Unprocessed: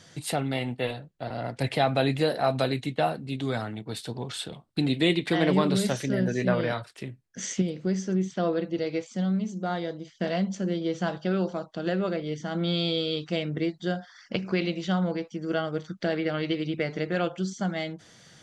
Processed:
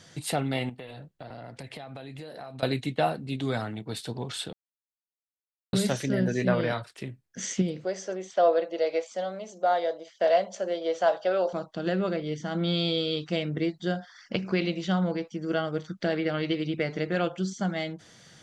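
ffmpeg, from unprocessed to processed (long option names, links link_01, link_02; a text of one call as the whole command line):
ffmpeg -i in.wav -filter_complex "[0:a]asettb=1/sr,asplit=3[link_01][link_02][link_03];[link_01]atrim=end=0.694[link_04];[link_02]atrim=start=0.69:end=2.63,asetpts=PTS-STARTPTS,afade=type=in:duration=0.004:curve=qsin,afade=type=out:start_time=1.936:duration=0.004:curve=qsin,acompressor=threshold=-37dB:ratio=16:attack=3.2:release=140:knee=1:detection=peak[link_05];[link_03]atrim=start=2.626[link_06];[link_04][link_05]acrossfade=duration=0.004:curve1=hsin:curve2=qsin[link_07];[link_07][link_06]acrossfade=duration=0.004:curve1=qsin:curve2=hsin,asettb=1/sr,asplit=3[link_08][link_09][link_10];[link_08]atrim=end=7.844[link_11];[link_09]atrim=start=7.84:end=11.53,asetpts=PTS-STARTPTS,afade=type=in:duration=0.004:curve=qsin,afade=type=out:start_time=3.686:duration=0.004:curve=qsin,highpass=frequency=600:width_type=q:width=3.7[link_12];[link_10]atrim=start=11.526[link_13];[link_11][link_12]acrossfade=duration=0.004:curve1=hsin:curve2=qsin[link_14];[link_14][link_13]acrossfade=duration=0.004:curve1=qsin:curve2=hsin,asplit=3[link_15][link_16][link_17];[link_15]atrim=end=4.53,asetpts=PTS-STARTPTS,afade=type=out:start_time=4.526:duration=0.004:curve=hsin[link_18];[link_16]atrim=start=4.53:end=5.73,asetpts=PTS-STARTPTS,volume=0[link_19];[link_17]atrim=start=5.73,asetpts=PTS-STARTPTS,afade=type=in:duration=0.004:curve=hsin[link_20];[link_18][link_19][link_20]concat=n=3:v=0:a=1" out.wav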